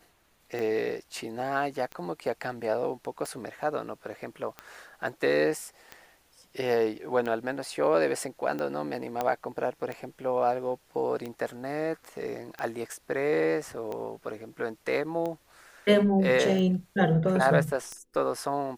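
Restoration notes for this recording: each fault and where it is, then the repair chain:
tick 45 rpm -22 dBFS
9.21 pop -15 dBFS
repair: de-click

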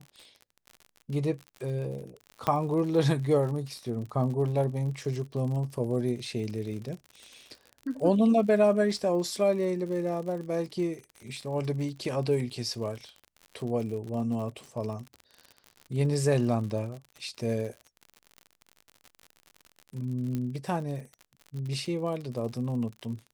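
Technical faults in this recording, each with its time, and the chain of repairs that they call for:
crackle 58/s -37 dBFS
2.47 pop -13 dBFS
20.35 pop -20 dBFS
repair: de-click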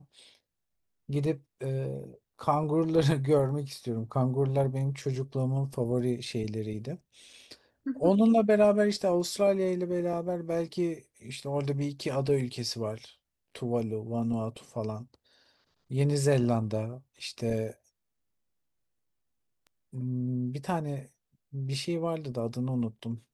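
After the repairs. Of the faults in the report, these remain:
2.47 pop

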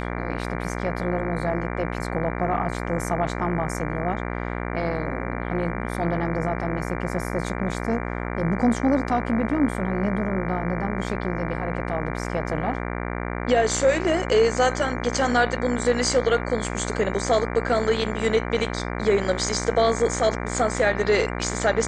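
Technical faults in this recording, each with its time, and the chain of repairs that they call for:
buzz 60 Hz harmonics 39 -29 dBFS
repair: de-hum 60 Hz, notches 39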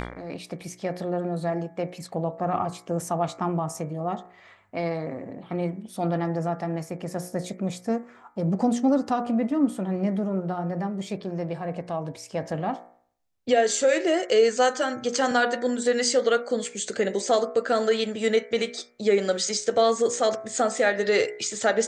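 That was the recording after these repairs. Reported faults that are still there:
none

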